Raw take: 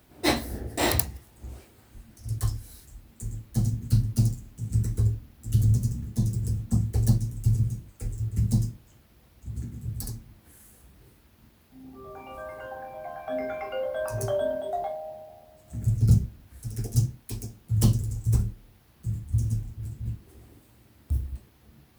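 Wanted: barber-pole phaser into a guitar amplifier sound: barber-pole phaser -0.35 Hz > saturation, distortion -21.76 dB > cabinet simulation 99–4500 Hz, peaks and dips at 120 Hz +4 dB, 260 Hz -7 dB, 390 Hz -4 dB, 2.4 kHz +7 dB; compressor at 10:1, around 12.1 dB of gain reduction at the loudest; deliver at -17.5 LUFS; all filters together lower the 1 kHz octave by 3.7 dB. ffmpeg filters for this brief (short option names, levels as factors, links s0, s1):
-filter_complex "[0:a]equalizer=f=1000:t=o:g=-5.5,acompressor=threshold=0.0501:ratio=10,asplit=2[s0][s1];[s1]afreqshift=-0.35[s2];[s0][s2]amix=inputs=2:normalize=1,asoftclip=threshold=0.075,highpass=99,equalizer=f=120:t=q:w=4:g=4,equalizer=f=260:t=q:w=4:g=-7,equalizer=f=390:t=q:w=4:g=-4,equalizer=f=2400:t=q:w=4:g=7,lowpass=f=4500:w=0.5412,lowpass=f=4500:w=1.3066,volume=11.2"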